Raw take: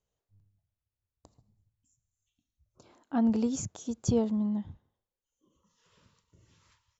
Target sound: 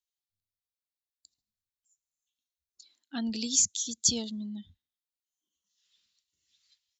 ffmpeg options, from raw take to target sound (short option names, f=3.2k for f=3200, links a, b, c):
-af "crystalizer=i=8:c=0,equalizer=f=125:t=o:w=1:g=-11,equalizer=f=250:t=o:w=1:g=3,equalizer=f=500:t=o:w=1:g=-6,equalizer=f=1k:t=o:w=1:g=-7,equalizer=f=2k:t=o:w=1:g=5,equalizer=f=4k:t=o:w=1:g=12,afftdn=nr=19:nf=-38,volume=-6.5dB"